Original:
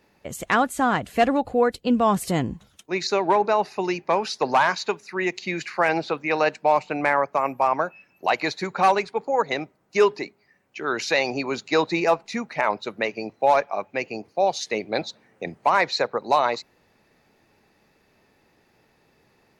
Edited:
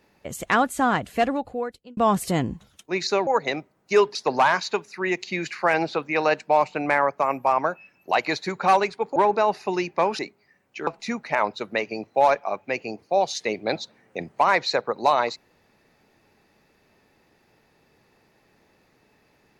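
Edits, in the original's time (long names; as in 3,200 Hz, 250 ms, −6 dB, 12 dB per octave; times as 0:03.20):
0:00.96–0:01.97: fade out
0:03.27–0:04.30: swap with 0:09.31–0:10.19
0:10.87–0:12.13: remove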